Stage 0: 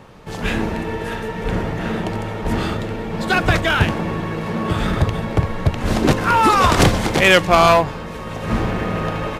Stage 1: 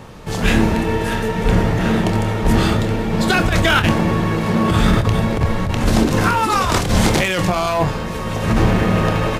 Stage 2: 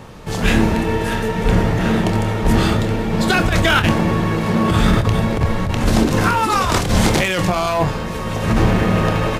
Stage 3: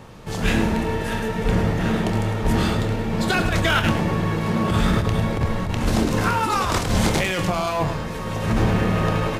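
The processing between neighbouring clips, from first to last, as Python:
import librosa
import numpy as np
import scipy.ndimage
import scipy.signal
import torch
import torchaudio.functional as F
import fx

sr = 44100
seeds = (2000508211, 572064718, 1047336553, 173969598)

y1 = fx.bass_treble(x, sr, bass_db=3, treble_db=5)
y1 = fx.over_compress(y1, sr, threshold_db=-17.0, ratio=-1.0)
y1 = fx.doubler(y1, sr, ms=27.0, db=-10.5)
y1 = y1 * librosa.db_to_amplitude(2.0)
y2 = y1
y3 = y2 + 10.0 ** (-10.0 / 20.0) * np.pad(y2, (int(105 * sr / 1000.0), 0))[:len(y2)]
y3 = y3 * librosa.db_to_amplitude(-5.0)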